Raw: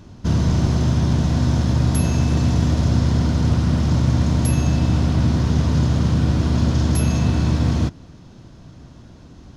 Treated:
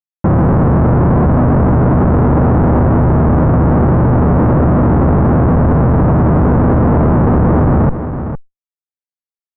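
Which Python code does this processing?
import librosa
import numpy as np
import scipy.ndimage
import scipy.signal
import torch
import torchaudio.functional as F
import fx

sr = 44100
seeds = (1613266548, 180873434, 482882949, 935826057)

p1 = fx.peak_eq(x, sr, hz=350.0, db=10.0, octaves=2.8)
p2 = fx.schmitt(p1, sr, flips_db=-21.0)
p3 = scipy.signal.sosfilt(scipy.signal.butter(4, 1300.0, 'lowpass', fs=sr, output='sos'), p2)
p4 = p3 + fx.echo_single(p3, sr, ms=459, db=-19.0, dry=0)
p5 = fx.env_flatten(p4, sr, amount_pct=50)
y = F.gain(torch.from_numpy(p5), 3.0).numpy()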